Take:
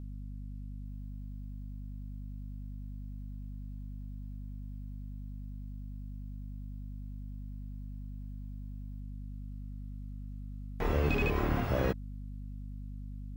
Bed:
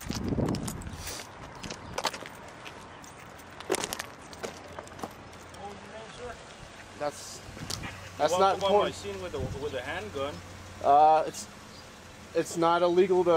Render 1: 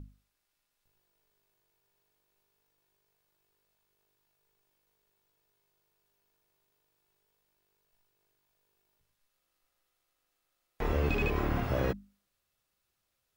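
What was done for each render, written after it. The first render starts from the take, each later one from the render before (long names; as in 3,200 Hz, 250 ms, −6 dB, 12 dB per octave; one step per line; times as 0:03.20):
mains-hum notches 50/100/150/200/250 Hz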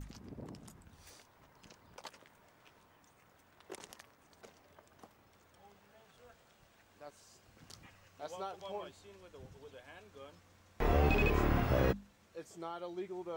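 mix in bed −19.5 dB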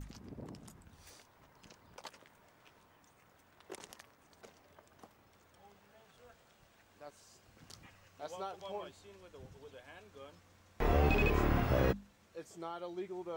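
no processing that can be heard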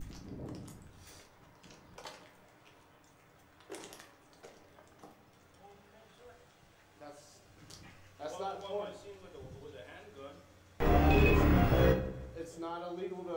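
feedback echo with a low-pass in the loop 166 ms, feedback 51%, low-pass 3,200 Hz, level −18 dB
rectangular room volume 44 cubic metres, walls mixed, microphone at 0.56 metres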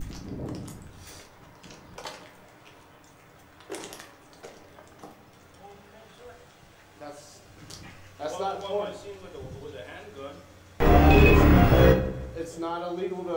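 level +9 dB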